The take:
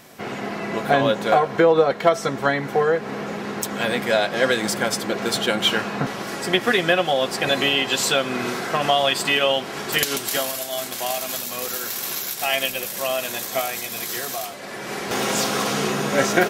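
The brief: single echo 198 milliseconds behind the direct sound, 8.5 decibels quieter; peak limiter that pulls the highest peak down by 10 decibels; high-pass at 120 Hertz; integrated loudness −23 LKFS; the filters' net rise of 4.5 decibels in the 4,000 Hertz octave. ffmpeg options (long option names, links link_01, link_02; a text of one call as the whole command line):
ffmpeg -i in.wav -af "highpass=120,equalizer=frequency=4000:width_type=o:gain=6,alimiter=limit=-11.5dB:level=0:latency=1,aecho=1:1:198:0.376,volume=-0.5dB" out.wav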